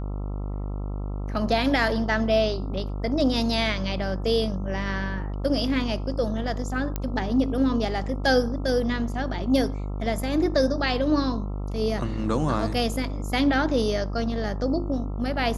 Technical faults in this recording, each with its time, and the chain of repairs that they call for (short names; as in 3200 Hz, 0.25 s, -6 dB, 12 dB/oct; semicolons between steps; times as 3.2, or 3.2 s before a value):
buzz 50 Hz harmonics 27 -30 dBFS
6.96 pop -13 dBFS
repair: de-click; de-hum 50 Hz, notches 27